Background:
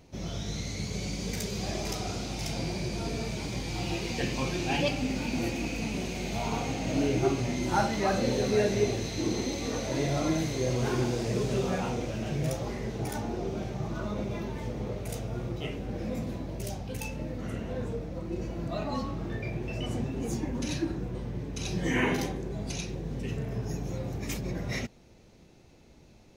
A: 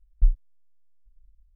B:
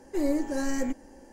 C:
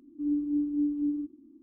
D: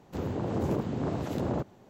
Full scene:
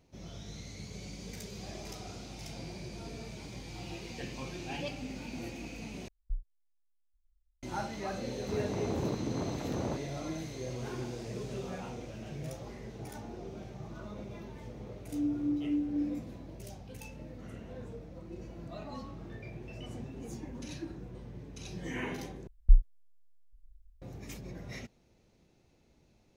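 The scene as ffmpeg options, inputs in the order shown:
ffmpeg -i bed.wav -i cue0.wav -i cue1.wav -i cue2.wav -i cue3.wav -filter_complex "[1:a]asplit=2[link_01][link_02];[0:a]volume=-10.5dB,asplit=3[link_03][link_04][link_05];[link_03]atrim=end=6.084[link_06];[link_01]atrim=end=1.55,asetpts=PTS-STARTPTS,volume=-17dB[link_07];[link_04]atrim=start=7.626:end=22.474[link_08];[link_02]atrim=end=1.55,asetpts=PTS-STARTPTS,volume=-0.5dB[link_09];[link_05]atrim=start=24.016[link_10];[4:a]atrim=end=1.89,asetpts=PTS-STARTPTS,volume=-4.5dB,afade=type=in:duration=0.004:curve=hsin,afade=type=out:start_time=1.886:duration=0.004:curve=hsin,adelay=367794S[link_11];[3:a]atrim=end=1.62,asetpts=PTS-STARTPTS,volume=-3.5dB,afade=type=in:duration=0.004:curve=hsin,afade=type=out:start_time=1.616:duration=0.004:curve=hsin,adelay=14930[link_12];[link_06][link_07]acrossfade=duration=0.004:curve1=hsin:curve2=hsin[link_13];[link_13][link_08]acrossfade=duration=0.004:curve1=hsin:curve2=hsin[link_14];[link_14][link_09]acrossfade=duration=0.004:curve1=hsin:curve2=hsin[link_15];[link_15][link_10]acrossfade=duration=0.004:curve1=hsin:curve2=hsin[link_16];[link_16][link_11][link_12]amix=inputs=3:normalize=0" out.wav

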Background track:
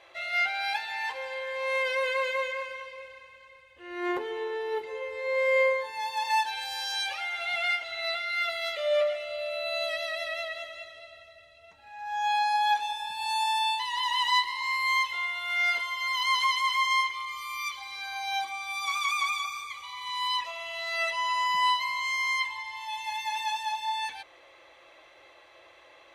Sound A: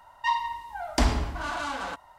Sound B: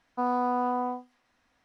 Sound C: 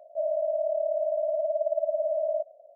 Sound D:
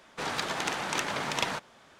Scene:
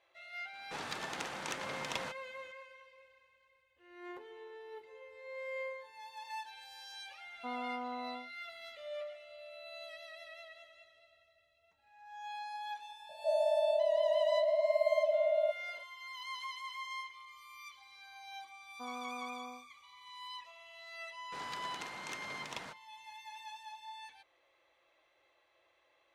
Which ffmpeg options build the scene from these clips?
ffmpeg -i bed.wav -i cue0.wav -i cue1.wav -i cue2.wav -i cue3.wav -filter_complex "[4:a]asplit=2[link_01][link_02];[2:a]asplit=2[link_03][link_04];[0:a]volume=-17.5dB[link_05];[link_03]acompressor=mode=upward:threshold=-53dB:ratio=2.5:attack=3.2:release=140:knee=2.83:detection=peak[link_06];[3:a]equalizer=frequency=550:width=1.6:gain=6[link_07];[link_04]lowpass=3600[link_08];[link_02]agate=range=-11dB:threshold=-50dB:ratio=16:release=100:detection=peak[link_09];[link_01]atrim=end=1.99,asetpts=PTS-STARTPTS,volume=-9.5dB,afade=type=in:duration=0.004:curve=hsin,afade=type=out:start_time=1.986:duration=0.004:curve=hsin,adelay=530[link_10];[link_06]atrim=end=1.64,asetpts=PTS-STARTPTS,volume=-13.5dB,afade=type=in:duration=0.004:curve=hsin,afade=type=out:start_time=1.636:duration=0.004:curve=hsin,adelay=7260[link_11];[link_07]atrim=end=2.75,asetpts=PTS-STARTPTS,volume=-8dB,afade=type=in:duration=0.004:curve=hsin,afade=type=out:start_time=2.746:duration=0.004:curve=hsin,adelay=13090[link_12];[link_08]atrim=end=1.64,asetpts=PTS-STARTPTS,volume=-17.5dB,afade=type=in:duration=0.004:curve=hsin,afade=type=out:start_time=1.636:duration=0.004:curve=hsin,adelay=18620[link_13];[link_09]atrim=end=1.99,asetpts=PTS-STARTPTS,volume=-14.5dB,afade=type=in:duration=0.004:curve=hsin,afade=type=out:start_time=1.986:duration=0.004:curve=hsin,adelay=21140[link_14];[link_05][link_10][link_11][link_12][link_13][link_14]amix=inputs=6:normalize=0" out.wav

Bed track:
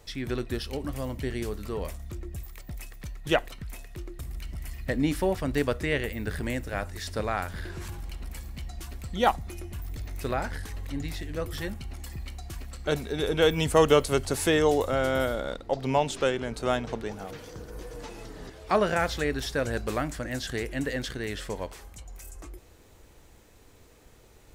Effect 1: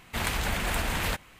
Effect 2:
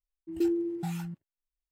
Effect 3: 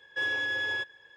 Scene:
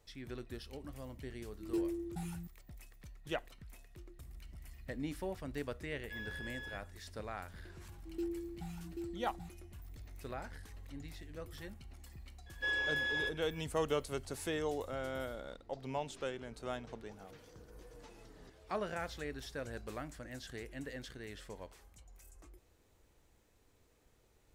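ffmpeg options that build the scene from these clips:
ffmpeg -i bed.wav -i cue0.wav -i cue1.wav -i cue2.wav -filter_complex "[2:a]asplit=2[link_01][link_02];[3:a]asplit=2[link_03][link_04];[0:a]volume=-14.5dB[link_05];[link_01]equalizer=frequency=9900:width_type=o:width=0.27:gain=13[link_06];[link_02]aecho=1:1:784:0.596[link_07];[link_06]atrim=end=1.71,asetpts=PTS-STARTPTS,volume=-8.5dB,afade=type=in:duration=0.004:curve=hsin,afade=type=out:start_time=1.706:duration=0.004:curve=hsin,adelay=1330[link_08];[link_03]atrim=end=1.16,asetpts=PTS-STARTPTS,volume=-16.5dB,afade=type=in:duration=0.004:curve=hsin,afade=type=out:start_time=1.156:duration=0.004:curve=hsin,adelay=5940[link_09];[link_07]atrim=end=1.71,asetpts=PTS-STARTPTS,volume=-12dB,afade=type=in:duration=0.004:curve=hsin,afade=type=out:start_time=1.706:duration=0.004:curve=hsin,adelay=343098S[link_10];[link_04]atrim=end=1.16,asetpts=PTS-STARTPTS,volume=-5dB,afade=type=in:duration=0.004:curve=hsin,afade=type=out:start_time=1.156:duration=0.004:curve=hsin,adelay=12460[link_11];[link_05][link_08][link_09][link_10][link_11]amix=inputs=5:normalize=0" out.wav

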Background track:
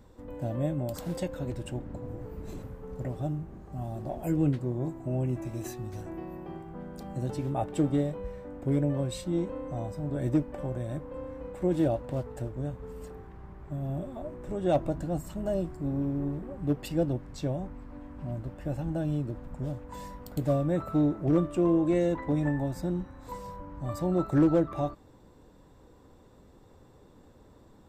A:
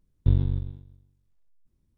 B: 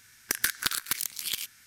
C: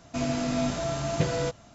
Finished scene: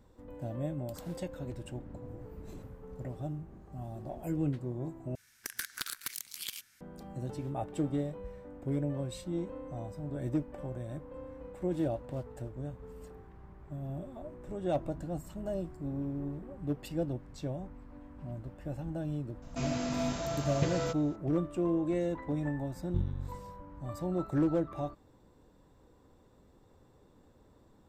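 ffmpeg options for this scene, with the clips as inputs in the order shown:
ffmpeg -i bed.wav -i cue0.wav -i cue1.wav -i cue2.wav -filter_complex "[0:a]volume=-6dB[link_01];[2:a]alimiter=limit=-9dB:level=0:latency=1:release=118[link_02];[link_01]asplit=2[link_03][link_04];[link_03]atrim=end=5.154[link_05];[link_02]atrim=end=1.66,asetpts=PTS-STARTPTS,volume=-8.5dB[link_06];[link_04]atrim=start=6.806[link_07];[3:a]atrim=end=1.74,asetpts=PTS-STARTPTS,volume=-5.5dB,afade=type=in:duration=0.004:curve=hsin,afade=type=out:start_time=1.736:duration=0.004:curve=hsin,adelay=19420[link_08];[1:a]atrim=end=1.97,asetpts=PTS-STARTPTS,volume=-12dB,afade=type=in:duration=0.004:curve=hsin,afade=type=out:start_time=1.966:duration=0.004:curve=hsin,adelay=22680[link_09];[link_05][link_06]acrossfade=duration=0.004:curve1=hsin:curve2=hsin[link_10];[link_10][link_07]acrossfade=duration=0.004:curve1=hsin:curve2=hsin[link_11];[link_11][link_08][link_09]amix=inputs=3:normalize=0" out.wav

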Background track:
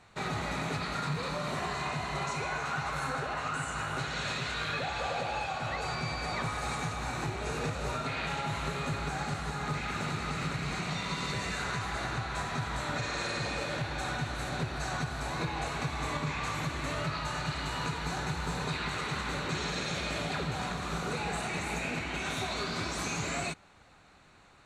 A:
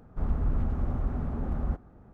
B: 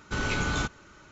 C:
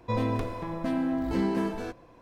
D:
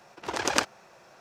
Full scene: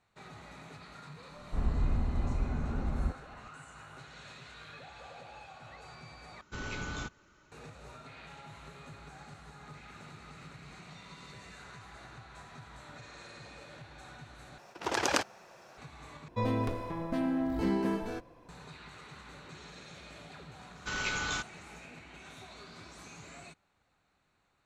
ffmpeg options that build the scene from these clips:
ffmpeg -i bed.wav -i cue0.wav -i cue1.wav -i cue2.wav -i cue3.wav -filter_complex "[2:a]asplit=2[link_01][link_02];[0:a]volume=-16dB[link_03];[4:a]alimiter=level_in=9.5dB:limit=-1dB:release=50:level=0:latency=1[link_04];[link_02]tiltshelf=frequency=690:gain=-6.5[link_05];[link_03]asplit=4[link_06][link_07][link_08][link_09];[link_06]atrim=end=6.414[link_10];[link_01]atrim=end=1.11,asetpts=PTS-STARTPTS,volume=-10.5dB[link_11];[link_07]atrim=start=7.516:end=14.584[link_12];[link_04]atrim=end=1.2,asetpts=PTS-STARTPTS,volume=-10dB[link_13];[link_08]atrim=start=15.776:end=16.284[link_14];[3:a]atrim=end=2.21,asetpts=PTS-STARTPTS,volume=-3dB[link_15];[link_09]atrim=start=18.486[link_16];[1:a]atrim=end=2.13,asetpts=PTS-STARTPTS,volume=-2.5dB,afade=type=in:duration=0.004:curve=hsin,afade=type=out:start_time=2.126:duration=0.004:curve=hsin,adelay=1360[link_17];[link_05]atrim=end=1.11,asetpts=PTS-STARTPTS,volume=-7.5dB,afade=type=in:duration=0.004:curve=hsin,afade=type=out:start_time=1.106:duration=0.004:curve=hsin,adelay=20750[link_18];[link_10][link_11]acrossfade=duration=0.004:curve1=hsin:curve2=hsin[link_19];[link_19][link_12]acrossfade=duration=0.004:curve1=hsin:curve2=hsin[link_20];[link_20][link_13]acrossfade=duration=0.004:curve1=hsin:curve2=hsin[link_21];[link_21][link_14]acrossfade=duration=0.004:curve1=hsin:curve2=hsin[link_22];[link_22][link_15]acrossfade=duration=0.004:curve1=hsin:curve2=hsin[link_23];[link_23][link_16]acrossfade=duration=0.004:curve1=hsin:curve2=hsin[link_24];[link_24][link_17][link_18]amix=inputs=3:normalize=0" out.wav

